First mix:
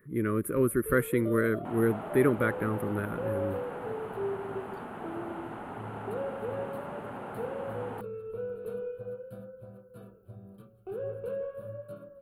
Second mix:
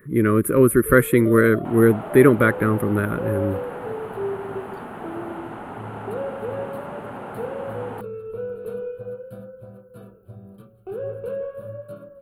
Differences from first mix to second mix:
speech +11.0 dB; first sound +6.0 dB; second sound +5.5 dB

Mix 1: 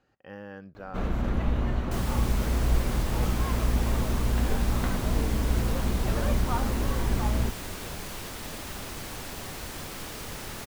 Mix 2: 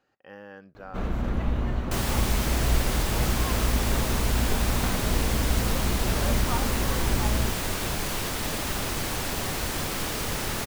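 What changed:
speech: add bass shelf 190 Hz -11.5 dB; second sound +8.5 dB

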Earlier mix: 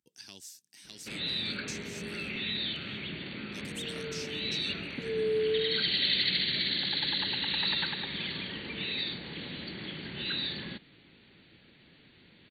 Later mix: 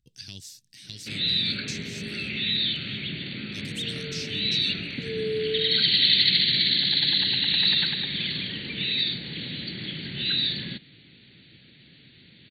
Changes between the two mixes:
speech: remove high-pass 220 Hz 12 dB/octave; master: add graphic EQ 125/250/1000/2000/4000 Hz +9/+3/-8/+4/+9 dB

